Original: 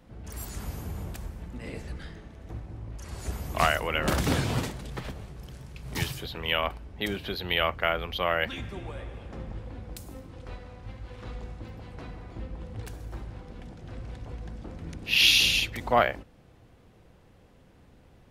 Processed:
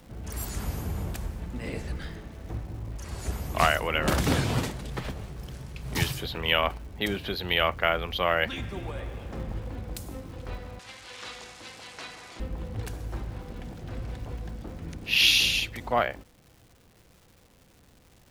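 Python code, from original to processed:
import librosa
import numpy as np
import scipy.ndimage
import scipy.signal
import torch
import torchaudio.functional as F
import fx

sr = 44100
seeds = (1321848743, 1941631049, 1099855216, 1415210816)

y = fx.rider(x, sr, range_db=4, speed_s=2.0)
y = fx.dmg_crackle(y, sr, seeds[0], per_s=440.0, level_db=-47.0)
y = fx.weighting(y, sr, curve='ITU-R 468', at=(10.79, 12.4))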